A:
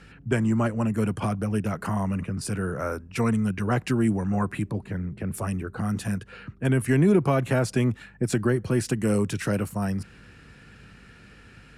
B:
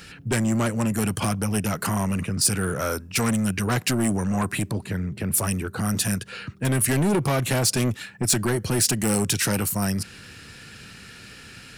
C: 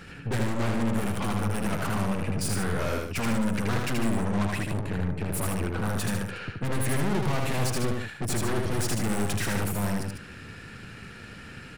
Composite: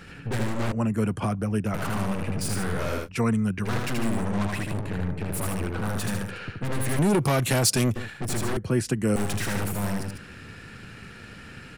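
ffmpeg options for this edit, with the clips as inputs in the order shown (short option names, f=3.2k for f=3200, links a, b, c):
-filter_complex "[0:a]asplit=3[a][b][c];[2:a]asplit=5[d][e][f][g][h];[d]atrim=end=0.722[i];[a]atrim=start=0.718:end=1.742[j];[e]atrim=start=1.738:end=3.09[k];[b]atrim=start=3.03:end=3.69[l];[f]atrim=start=3.63:end=6.992[m];[1:a]atrim=start=6.988:end=7.962[n];[g]atrim=start=7.958:end=8.572[o];[c]atrim=start=8.568:end=9.162[p];[h]atrim=start=9.158[q];[i][j]acrossfade=d=0.004:c1=hsin:c2=hsin[r];[r][k]acrossfade=d=0.004:c1=hsin:c2=hsin[s];[s][l]acrossfade=d=0.06:c1=tri:c2=tri[t];[t][m]acrossfade=d=0.06:c1=tri:c2=tri[u];[u][n]acrossfade=d=0.004:c1=hsin:c2=hsin[v];[v][o]acrossfade=d=0.004:c1=hsin:c2=hsin[w];[w][p]acrossfade=d=0.004:c1=hsin:c2=hsin[x];[x][q]acrossfade=d=0.004:c1=hsin:c2=hsin"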